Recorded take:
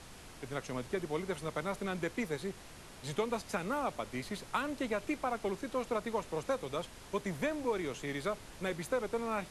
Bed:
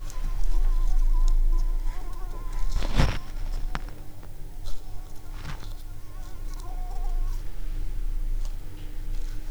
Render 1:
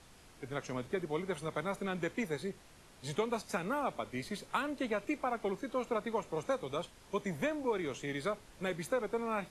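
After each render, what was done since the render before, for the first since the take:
noise reduction from a noise print 7 dB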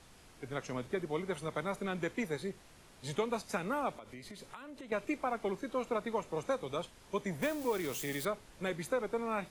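0:03.94–0:04.92: downward compressor 12 to 1, threshold −44 dBFS
0:07.42–0:08.25: spike at every zero crossing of −34.5 dBFS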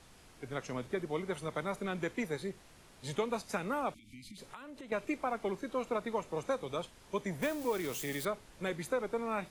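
0:03.94–0:04.38: Chebyshev band-stop filter 310–2,200 Hz, order 5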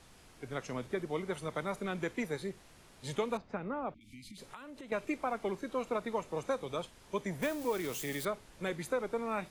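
0:03.37–0:04.01: head-to-tape spacing loss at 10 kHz 41 dB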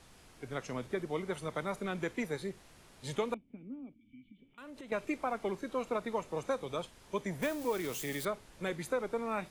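0:03.34–0:04.58: formant resonators in series i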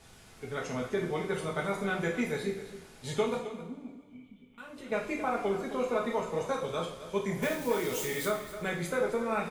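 single-tap delay 265 ms −13 dB
coupled-rooms reverb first 0.45 s, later 1.9 s, from −18 dB, DRR −2.5 dB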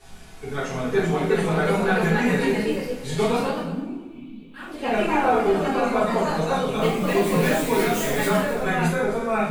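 rectangular room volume 160 cubic metres, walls furnished, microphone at 3.5 metres
delay with pitch and tempo change per echo 461 ms, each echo +2 semitones, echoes 2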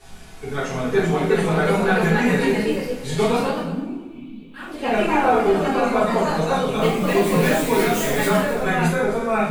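level +2.5 dB

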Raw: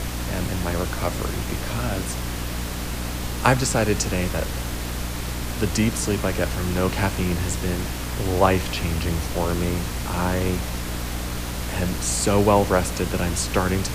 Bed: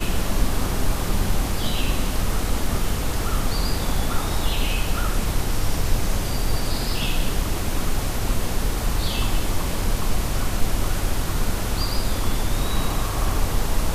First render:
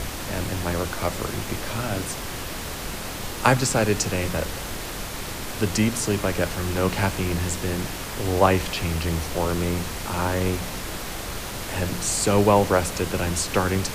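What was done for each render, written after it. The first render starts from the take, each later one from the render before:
hum removal 60 Hz, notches 5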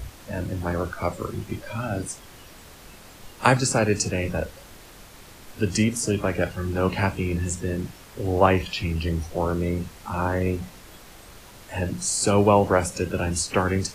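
noise reduction from a noise print 14 dB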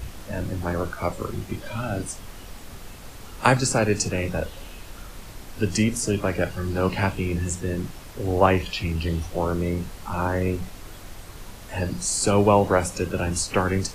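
mix in bed −19 dB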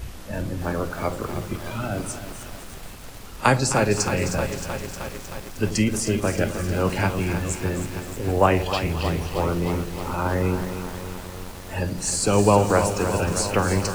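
echo with a time of its own for lows and highs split 780 Hz, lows 87 ms, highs 260 ms, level −12.5 dB
feedback echo at a low word length 311 ms, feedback 80%, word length 6 bits, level −9 dB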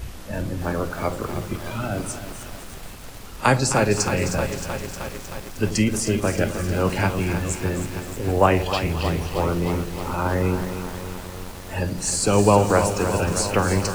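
level +1 dB
brickwall limiter −2 dBFS, peak gain reduction 2 dB

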